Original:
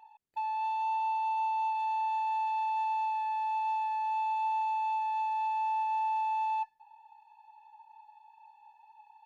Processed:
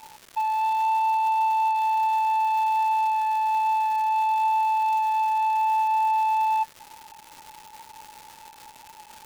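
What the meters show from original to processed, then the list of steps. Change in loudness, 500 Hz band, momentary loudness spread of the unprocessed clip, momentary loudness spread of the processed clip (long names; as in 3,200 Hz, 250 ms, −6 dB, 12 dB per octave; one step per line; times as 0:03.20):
+8.5 dB, can't be measured, 2 LU, 2 LU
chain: surface crackle 420 per second −42 dBFS
level +8.5 dB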